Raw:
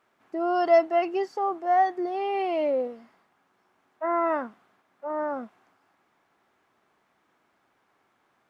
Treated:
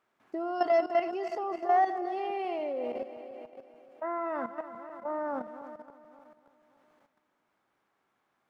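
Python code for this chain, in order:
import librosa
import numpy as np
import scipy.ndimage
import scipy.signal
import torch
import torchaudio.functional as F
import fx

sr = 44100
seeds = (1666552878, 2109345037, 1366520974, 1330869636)

y = fx.reverse_delay_fb(x, sr, ms=144, feedback_pct=72, wet_db=-11)
y = fx.level_steps(y, sr, step_db=11)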